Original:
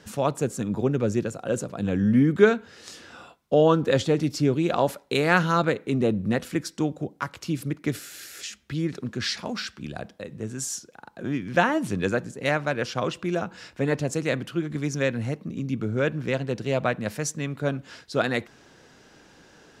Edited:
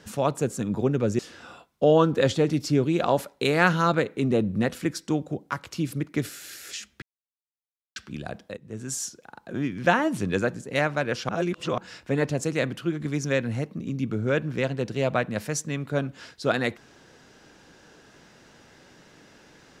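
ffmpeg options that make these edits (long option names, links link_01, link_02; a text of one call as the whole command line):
ffmpeg -i in.wav -filter_complex "[0:a]asplit=7[link_01][link_02][link_03][link_04][link_05][link_06][link_07];[link_01]atrim=end=1.192[link_08];[link_02]atrim=start=2.888:end=8.72,asetpts=PTS-STARTPTS,afade=type=out:start_time=5.828:duration=0.004:curve=hsin[link_09];[link_03]atrim=start=8.72:end=9.66,asetpts=PTS-STARTPTS,volume=0[link_10];[link_04]atrim=start=9.66:end=10.27,asetpts=PTS-STARTPTS,afade=type=in:duration=0.004:curve=hsin,afade=type=out:start_time=0.606:duration=0.004:curve=hsin:silence=0.133352[link_11];[link_05]atrim=start=10.27:end=12.992,asetpts=PTS-STARTPTS,afade=type=in:duration=0.43:curve=qsin:silence=0.133352[link_12];[link_06]atrim=start=12.988:end=13.482,asetpts=PTS-STARTPTS,areverse[link_13];[link_07]atrim=start=13.478[link_14];[link_09][link_10][link_11][link_12]concat=n=4:v=0:a=1[link_15];[link_08][link_15]acrossfade=duration=0.004:curve1=hsin:curve2=hsin[link_16];[link_16][link_13]acrossfade=duration=0.004:curve1=hsin:curve2=hsin[link_17];[link_17][link_14]acrossfade=duration=0.004:curve1=hsin:curve2=hsin" out.wav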